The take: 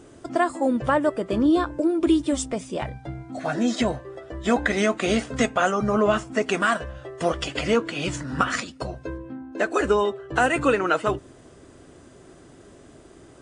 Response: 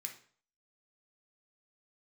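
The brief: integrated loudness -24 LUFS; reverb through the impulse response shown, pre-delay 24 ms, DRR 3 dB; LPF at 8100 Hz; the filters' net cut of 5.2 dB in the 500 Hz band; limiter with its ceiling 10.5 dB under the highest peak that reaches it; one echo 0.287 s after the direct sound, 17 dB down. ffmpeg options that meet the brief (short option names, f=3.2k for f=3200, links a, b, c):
-filter_complex "[0:a]lowpass=8.1k,equalizer=f=500:t=o:g=-7,alimiter=limit=-16dB:level=0:latency=1,aecho=1:1:287:0.141,asplit=2[a][b];[1:a]atrim=start_sample=2205,adelay=24[c];[b][c]afir=irnorm=-1:irlink=0,volume=0dB[d];[a][d]amix=inputs=2:normalize=0,volume=3dB"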